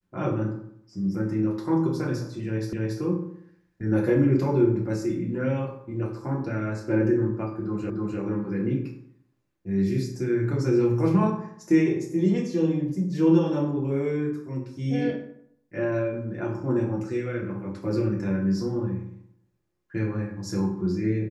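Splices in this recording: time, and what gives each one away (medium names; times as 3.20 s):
2.73 s: repeat of the last 0.28 s
7.90 s: repeat of the last 0.3 s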